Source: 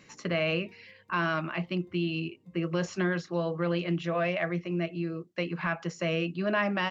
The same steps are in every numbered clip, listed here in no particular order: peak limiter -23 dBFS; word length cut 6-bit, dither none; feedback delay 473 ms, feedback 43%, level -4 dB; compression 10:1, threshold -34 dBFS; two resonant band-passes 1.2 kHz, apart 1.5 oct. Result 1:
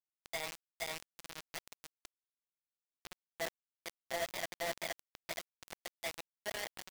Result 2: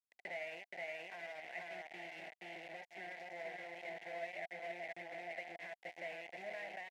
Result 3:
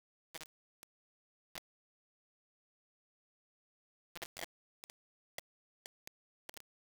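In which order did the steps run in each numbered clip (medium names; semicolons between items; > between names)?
feedback delay > peak limiter > two resonant band-passes > compression > word length cut; feedback delay > compression > word length cut > two resonant band-passes > peak limiter; compression > feedback delay > peak limiter > two resonant band-passes > word length cut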